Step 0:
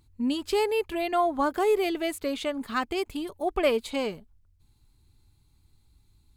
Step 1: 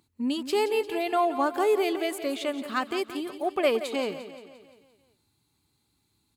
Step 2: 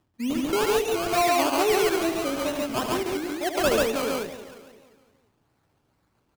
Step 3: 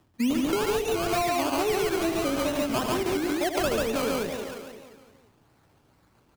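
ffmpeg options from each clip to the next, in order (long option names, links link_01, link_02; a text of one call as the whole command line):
ffmpeg -i in.wav -filter_complex "[0:a]highpass=190,asplit=2[link_01][link_02];[link_02]aecho=0:1:174|348|522|696|870|1044:0.251|0.133|0.0706|0.0374|0.0198|0.0105[link_03];[link_01][link_03]amix=inputs=2:normalize=0" out.wav
ffmpeg -i in.wav -af "acrusher=samples=19:mix=1:aa=0.000001:lfo=1:lforange=11.4:lforate=2.3,aecho=1:1:75.8|139.9:0.398|0.891" out.wav
ffmpeg -i in.wav -filter_complex "[0:a]acrossover=split=190[link_01][link_02];[link_01]alimiter=level_in=14.5dB:limit=-24dB:level=0:latency=1,volume=-14.5dB[link_03];[link_02]acompressor=threshold=-31dB:ratio=6[link_04];[link_03][link_04]amix=inputs=2:normalize=0,volume=7dB" out.wav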